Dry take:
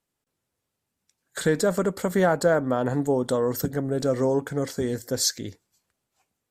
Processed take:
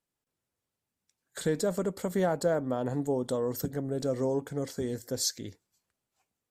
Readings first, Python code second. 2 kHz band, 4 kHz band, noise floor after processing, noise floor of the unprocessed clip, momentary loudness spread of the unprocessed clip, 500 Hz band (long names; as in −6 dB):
−11.0 dB, −6.5 dB, below −85 dBFS, −82 dBFS, 7 LU, −6.5 dB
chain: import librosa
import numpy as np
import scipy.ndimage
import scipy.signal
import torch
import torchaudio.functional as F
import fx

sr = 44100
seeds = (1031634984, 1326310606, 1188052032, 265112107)

y = fx.dynamic_eq(x, sr, hz=1500.0, q=1.4, threshold_db=-42.0, ratio=4.0, max_db=-6)
y = y * 10.0 ** (-6.0 / 20.0)